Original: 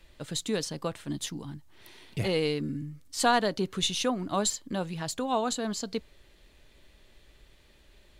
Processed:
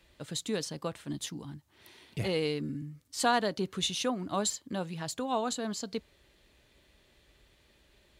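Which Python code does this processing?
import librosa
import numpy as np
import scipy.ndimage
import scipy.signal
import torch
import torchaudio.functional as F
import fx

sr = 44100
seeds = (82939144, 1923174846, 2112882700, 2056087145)

y = scipy.signal.sosfilt(scipy.signal.butter(2, 52.0, 'highpass', fs=sr, output='sos'), x)
y = y * librosa.db_to_amplitude(-3.0)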